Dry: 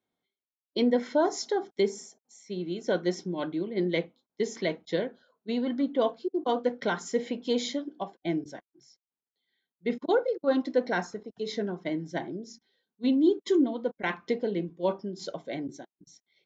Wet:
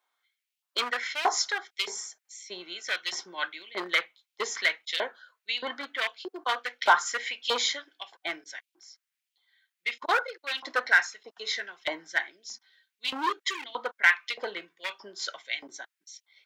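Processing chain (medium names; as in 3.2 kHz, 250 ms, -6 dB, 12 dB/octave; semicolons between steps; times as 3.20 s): hard clipper -21.5 dBFS, distortion -14 dB; LFO high-pass saw up 1.6 Hz 920–3000 Hz; trim +7.5 dB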